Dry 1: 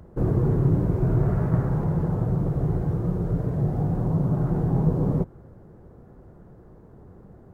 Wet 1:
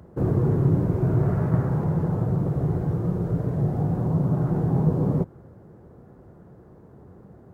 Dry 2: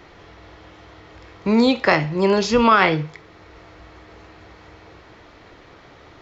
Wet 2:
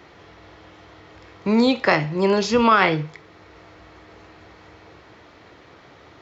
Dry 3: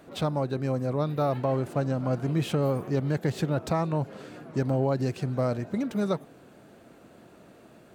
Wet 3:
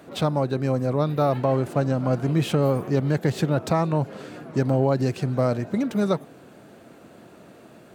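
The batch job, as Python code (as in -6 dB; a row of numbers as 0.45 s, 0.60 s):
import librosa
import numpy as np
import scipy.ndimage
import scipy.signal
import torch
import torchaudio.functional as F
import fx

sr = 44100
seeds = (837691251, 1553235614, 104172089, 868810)

y = scipy.signal.sosfilt(scipy.signal.butter(2, 74.0, 'highpass', fs=sr, output='sos'), x)
y = y * 10.0 ** (-24 / 20.0) / np.sqrt(np.mean(np.square(y)))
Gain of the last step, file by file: +1.0 dB, -1.5 dB, +5.0 dB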